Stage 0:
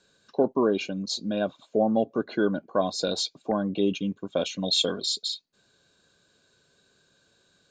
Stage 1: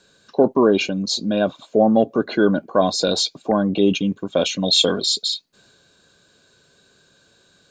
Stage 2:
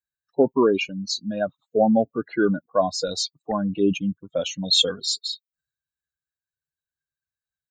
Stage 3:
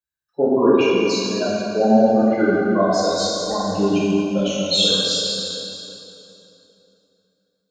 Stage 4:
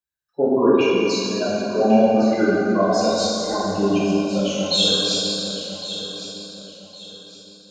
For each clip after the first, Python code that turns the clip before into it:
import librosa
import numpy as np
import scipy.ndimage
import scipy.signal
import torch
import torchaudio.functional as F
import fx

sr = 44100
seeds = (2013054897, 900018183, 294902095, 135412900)

y1 = fx.transient(x, sr, attack_db=-1, sustain_db=3)
y1 = y1 * librosa.db_to_amplitude(8.0)
y2 = fx.bin_expand(y1, sr, power=2.0)
y3 = y2 + 10.0 ** (-22.5 / 20.0) * np.pad(y2, (int(672 * sr / 1000.0), 0))[:len(y2)]
y3 = fx.rev_plate(y3, sr, seeds[0], rt60_s=3.1, hf_ratio=0.75, predelay_ms=0, drr_db=-8.5)
y3 = y3 * librosa.db_to_amplitude(-4.0)
y4 = fx.echo_feedback(y3, sr, ms=1110, feedback_pct=32, wet_db=-12)
y4 = y4 * librosa.db_to_amplitude(-1.0)